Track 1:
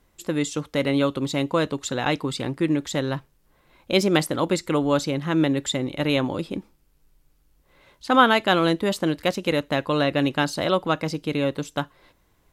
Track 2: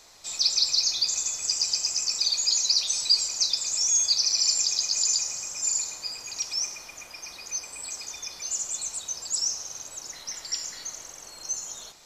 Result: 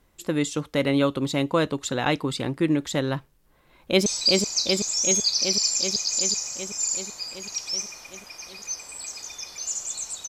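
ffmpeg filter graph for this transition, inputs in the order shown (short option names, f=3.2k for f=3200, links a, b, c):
-filter_complex "[0:a]apad=whole_dur=10.28,atrim=end=10.28,atrim=end=4.062[a];[1:a]atrim=start=2.898:end=9.12[b];[a][b]acrossfade=d=0.004:c1=hsin:c2=hsin,asplit=2[c][d];[d]afade=t=in:st=3.43:d=0.01,afade=t=out:st=4.06:d=0.01,aecho=0:1:380|760|1140|1520|1900|2280|2660|3040|3420|3800|4180|4560:0.749894|0.562421|0.421815|0.316362|0.237271|0.177953|0.133465|0.100099|0.0750741|0.0563056|0.0422292|0.0316719[e];[c][e]amix=inputs=2:normalize=0"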